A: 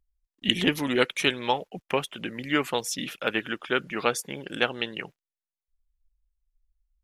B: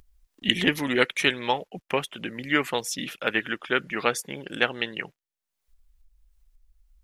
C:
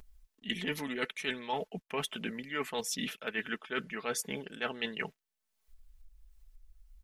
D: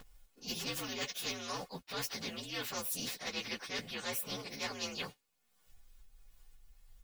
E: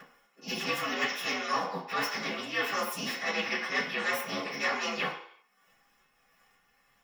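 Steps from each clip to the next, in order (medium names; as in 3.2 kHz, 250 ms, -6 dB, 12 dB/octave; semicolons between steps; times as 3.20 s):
upward compressor, threshold -45 dBFS; dynamic bell 1.9 kHz, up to +6 dB, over -41 dBFS, Q 2.9
comb 4.6 ms, depth 53%; reverse; compression 8:1, threshold -32 dBFS, peak gain reduction 18.5 dB; reverse
frequency axis rescaled in octaves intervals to 119%; spectrum-flattening compressor 2:1
reverberation RT60 0.65 s, pre-delay 3 ms, DRR -6.5 dB; trim -3.5 dB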